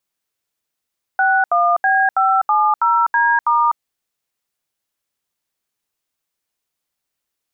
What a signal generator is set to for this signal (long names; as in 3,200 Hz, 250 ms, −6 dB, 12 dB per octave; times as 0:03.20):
touch tones "61B570D*", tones 250 ms, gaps 75 ms, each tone −14.5 dBFS